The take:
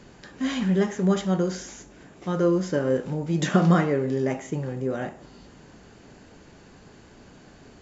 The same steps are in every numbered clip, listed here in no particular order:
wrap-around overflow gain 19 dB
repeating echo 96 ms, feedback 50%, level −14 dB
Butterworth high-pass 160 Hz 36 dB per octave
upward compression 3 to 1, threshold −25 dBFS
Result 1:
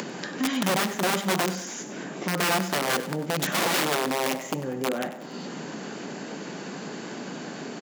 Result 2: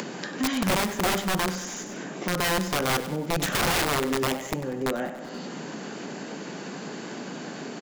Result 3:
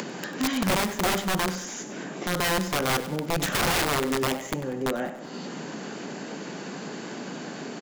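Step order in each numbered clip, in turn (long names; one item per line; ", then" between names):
wrap-around overflow, then Butterworth high-pass, then upward compression, then repeating echo
Butterworth high-pass, then wrap-around overflow, then repeating echo, then upward compression
Butterworth high-pass, then upward compression, then wrap-around overflow, then repeating echo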